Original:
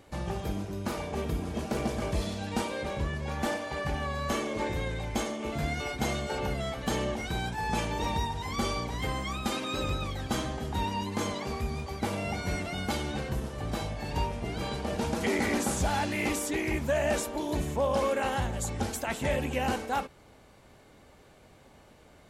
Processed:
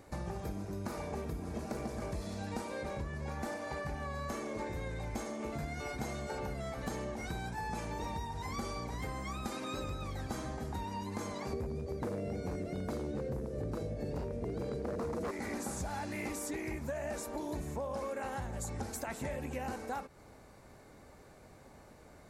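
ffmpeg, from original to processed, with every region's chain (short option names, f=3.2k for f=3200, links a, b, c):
-filter_complex "[0:a]asettb=1/sr,asplit=3[a][b][c];[a]atrim=end=11.534[d];[b]atrim=start=11.53:end=15.31,asetpts=PTS-STARTPTS,afade=t=in:d=0.004:c=qsin,afade=t=out:st=3.776:d=0.004:c=qsin,lowshelf=f=670:t=q:w=3:g=9.5,aeval=exprs='0.158*(abs(mod(val(0)/0.158+3,4)-2)-1)':c=same,highpass=56[e];[c]atrim=start=15.306[f];[d][e]acrossfade=d=0.004:c1=hsin:c2=qsin[g];[g][f]acrossfade=d=0.004:c1=qsin:c2=hsin,equalizer=f=3.1k:w=2.7:g=-10.5,acompressor=threshold=-36dB:ratio=6"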